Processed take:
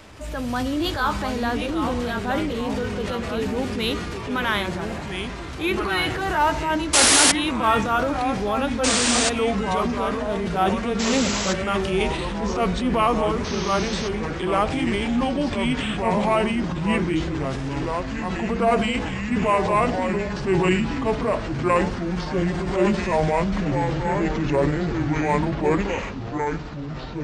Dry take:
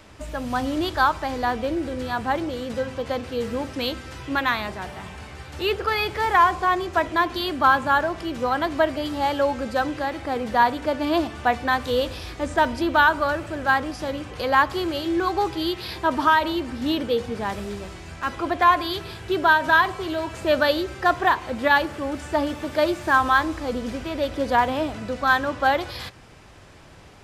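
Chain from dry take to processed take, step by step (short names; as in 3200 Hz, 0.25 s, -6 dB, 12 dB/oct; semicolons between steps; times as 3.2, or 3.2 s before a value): gliding pitch shift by -10.5 st starting unshifted; dynamic EQ 770 Hz, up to -6 dB, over -33 dBFS, Q 0.91; transient shaper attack -5 dB, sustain +6 dB; painted sound noise, 6.93–7.32, 270–11000 Hz -19 dBFS; echoes that change speed 0.593 s, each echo -3 st, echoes 3, each echo -6 dB; gain +3.5 dB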